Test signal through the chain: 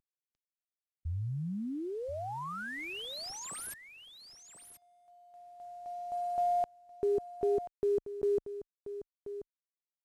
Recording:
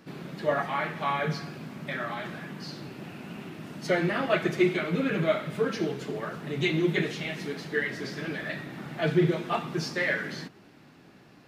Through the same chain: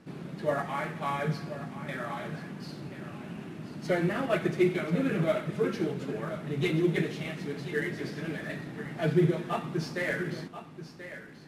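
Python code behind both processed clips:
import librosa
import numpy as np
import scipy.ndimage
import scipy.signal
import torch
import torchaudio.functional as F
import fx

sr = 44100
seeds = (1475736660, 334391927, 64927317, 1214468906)

p1 = fx.cvsd(x, sr, bps=64000)
p2 = fx.tilt_eq(p1, sr, slope=-1.5)
p3 = p2 + fx.echo_single(p2, sr, ms=1033, db=-12.0, dry=0)
y = p3 * 10.0 ** (-3.5 / 20.0)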